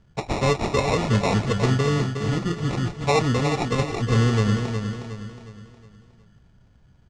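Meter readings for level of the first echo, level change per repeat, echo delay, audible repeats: -7.0 dB, -7.5 dB, 0.363 s, 4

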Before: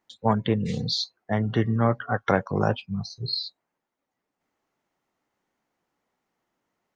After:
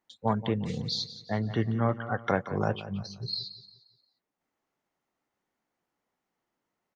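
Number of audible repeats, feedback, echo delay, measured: 3, 38%, 0.176 s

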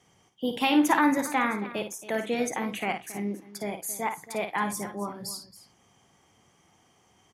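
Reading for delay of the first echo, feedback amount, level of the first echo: 54 ms, no steady repeat, -8.0 dB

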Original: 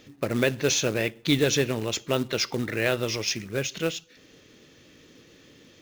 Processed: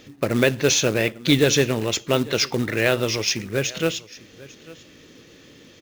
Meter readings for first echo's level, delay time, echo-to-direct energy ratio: -20.5 dB, 0.847 s, -20.5 dB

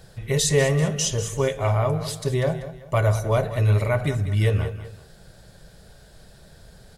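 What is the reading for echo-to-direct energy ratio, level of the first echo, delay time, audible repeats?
-12.5 dB, -13.0 dB, 0.193 s, 2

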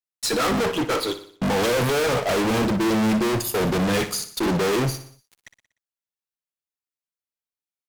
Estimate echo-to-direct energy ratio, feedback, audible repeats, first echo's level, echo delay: -11.0 dB, 52%, 4, -12.5 dB, 60 ms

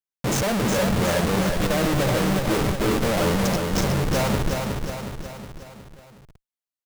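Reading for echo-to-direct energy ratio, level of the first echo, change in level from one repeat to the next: -3.0 dB, -4.5 dB, -5.5 dB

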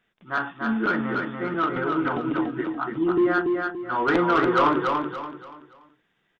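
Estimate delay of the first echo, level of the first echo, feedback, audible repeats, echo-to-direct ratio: 0.287 s, -4.0 dB, 34%, 4, -3.5 dB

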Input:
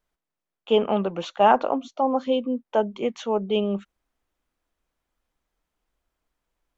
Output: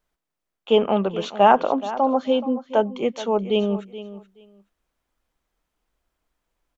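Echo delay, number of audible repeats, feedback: 0.426 s, 2, 17%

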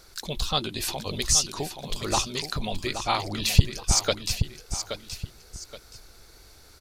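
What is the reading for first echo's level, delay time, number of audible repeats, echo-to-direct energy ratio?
-9.0 dB, 0.824 s, 2, -8.5 dB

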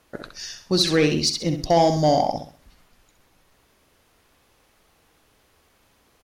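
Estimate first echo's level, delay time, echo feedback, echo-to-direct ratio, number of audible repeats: -8.0 dB, 65 ms, 33%, -7.5 dB, 3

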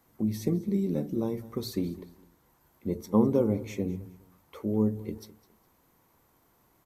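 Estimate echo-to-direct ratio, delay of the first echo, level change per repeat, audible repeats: -18.5 dB, 0.206 s, -11.0 dB, 2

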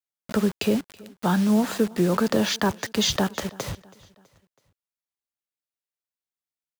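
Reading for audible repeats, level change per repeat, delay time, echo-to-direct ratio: 2, -6.5 dB, 0.326 s, -21.5 dB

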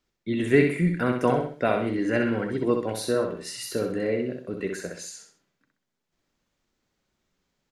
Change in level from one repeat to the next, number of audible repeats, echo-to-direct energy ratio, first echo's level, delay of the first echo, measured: -8.0 dB, 3, -4.5 dB, -5.0 dB, 64 ms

